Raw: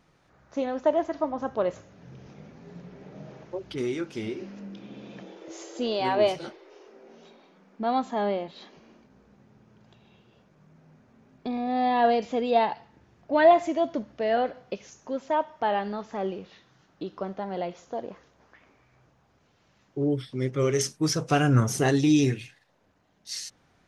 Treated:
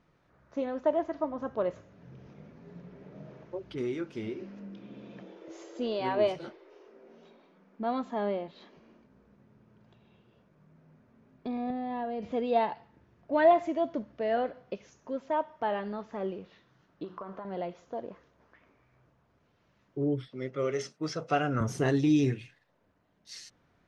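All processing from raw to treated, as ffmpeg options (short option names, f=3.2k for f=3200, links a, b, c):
-filter_complex "[0:a]asettb=1/sr,asplit=3[a][b][c];[a]atrim=end=11.704[d];[b]atrim=start=11.7:end=12.32,asetpts=PTS-STARTPTS,afade=t=in:d=0.004:c=qsin,afade=t=out:st=0.616:d=0.004:c=qsin,lowpass=f=3.8k:p=1,equalizer=f=81:w=0.38:g=10.5,acompressor=threshold=-26dB:ratio=12:attack=3.2:release=140:knee=1:detection=peak[e];[c]atrim=start=12.316[f];[d][e]acrossfade=d=0.004:c1=hsin:c2=qsin[g];[g][f]acrossfade=d=0.004:c1=qsin:c2=hsin,asettb=1/sr,asplit=3[h][i][j];[h]atrim=end=17.044[k];[i]atrim=start=17.04:end=17.45,asetpts=PTS-STARTPTS,afade=t=in:d=0.004:c=qsin,afade=t=out:st=0.406:d=0.004:c=qsin,equalizer=f=1.1k:t=o:w=0.93:g=14,bandreject=f=91.49:t=h:w=4,bandreject=f=182.98:t=h:w=4,bandreject=f=274.47:t=h:w=4,bandreject=f=365.96:t=h:w=4,bandreject=f=457.45:t=h:w=4,bandreject=f=548.94:t=h:w=4,bandreject=f=640.43:t=h:w=4,bandreject=f=731.92:t=h:w=4,bandreject=f=823.41:t=h:w=4,bandreject=f=914.9:t=h:w=4,bandreject=f=1.00639k:t=h:w=4,bandreject=f=1.09788k:t=h:w=4,bandreject=f=1.18937k:t=h:w=4,bandreject=f=1.28086k:t=h:w=4,bandreject=f=1.37235k:t=h:w=4,bandreject=f=1.46384k:t=h:w=4,bandreject=f=1.55533k:t=h:w=4,bandreject=f=1.64682k:t=h:w=4,bandreject=f=1.73831k:t=h:w=4,bandreject=f=1.8298k:t=h:w=4,bandreject=f=1.92129k:t=h:w=4,bandreject=f=2.01278k:t=h:w=4,bandreject=f=2.10427k:t=h:w=4,bandreject=f=2.19576k:t=h:w=4,bandreject=f=2.28725k:t=h:w=4,bandreject=f=2.37874k:t=h:w=4,bandreject=f=2.47023k:t=h:w=4,bandreject=f=2.56172k:t=h:w=4,bandreject=f=2.65321k:t=h:w=4,bandreject=f=2.7447k:t=h:w=4,bandreject=f=2.83619k:t=h:w=4,bandreject=f=2.92768k:t=h:w=4,bandreject=f=3.01917k:t=h:w=4,bandreject=f=3.11066k:t=h:w=4,bandreject=f=3.20215k:t=h:w=4,bandreject=f=3.29364k:t=h:w=4,bandreject=f=3.38513k:t=h:w=4,acompressor=threshold=-33dB:ratio=5:attack=3.2:release=140:knee=1:detection=peak[l];[j]atrim=start=17.446[m];[k][l]acrossfade=d=0.004:c1=hsin:c2=qsin[n];[n][m]acrossfade=d=0.004:c1=qsin:c2=hsin,asettb=1/sr,asplit=3[o][p][q];[o]atrim=end=20.284[r];[p]atrim=start=20.28:end=21.61,asetpts=PTS-STARTPTS,afade=t=in:d=0.004:c=qsin,afade=t=out:st=1.326:d=0.004:c=qsin,highpass=240,lowpass=5.9k,aecho=1:1:1.5:0.36,atrim=end_sample=58653[s];[q]atrim=start=21.606[t];[r][s]acrossfade=d=0.004:c1=hsin:c2=qsin[u];[u][t]acrossfade=d=0.004:c1=qsin:c2=hsin,lowpass=f=2.4k:p=1,bandreject=f=790:w=12,volume=-3.5dB"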